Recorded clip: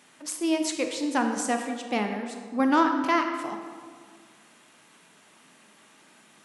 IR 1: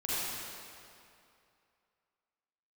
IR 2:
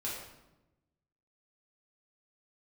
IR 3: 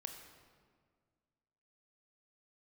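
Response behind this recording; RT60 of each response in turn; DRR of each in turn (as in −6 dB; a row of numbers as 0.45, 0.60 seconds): 3; 2.5, 1.0, 1.8 seconds; −10.0, −7.0, 4.0 decibels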